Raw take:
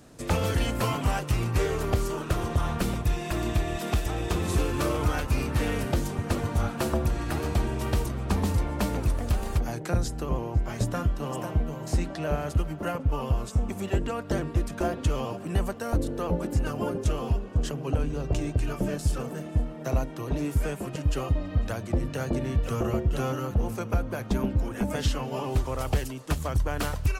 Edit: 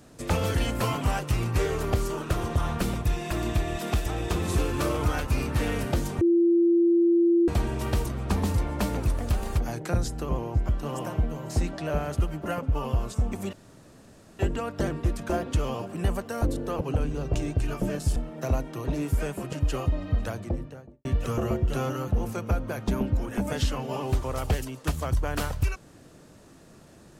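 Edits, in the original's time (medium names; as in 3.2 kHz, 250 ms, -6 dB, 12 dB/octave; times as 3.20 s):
6.21–7.48 s: bleep 341 Hz -17 dBFS
10.69–11.06 s: delete
13.90 s: insert room tone 0.86 s
16.32–17.80 s: delete
19.15–19.59 s: delete
21.63–22.48 s: studio fade out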